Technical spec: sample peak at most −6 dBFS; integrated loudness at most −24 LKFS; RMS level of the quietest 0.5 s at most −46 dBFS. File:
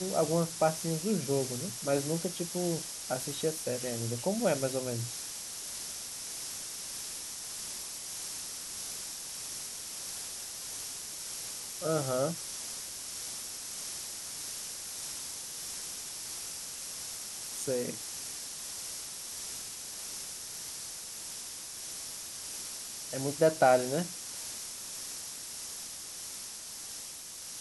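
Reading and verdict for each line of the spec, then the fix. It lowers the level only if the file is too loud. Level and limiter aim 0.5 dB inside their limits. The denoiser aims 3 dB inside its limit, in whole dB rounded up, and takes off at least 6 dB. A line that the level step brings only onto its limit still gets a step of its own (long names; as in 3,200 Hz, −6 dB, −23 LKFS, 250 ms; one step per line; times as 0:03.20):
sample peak −12.5 dBFS: in spec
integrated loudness −35.0 LKFS: in spec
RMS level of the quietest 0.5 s −44 dBFS: out of spec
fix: broadband denoise 6 dB, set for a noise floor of −44 dBFS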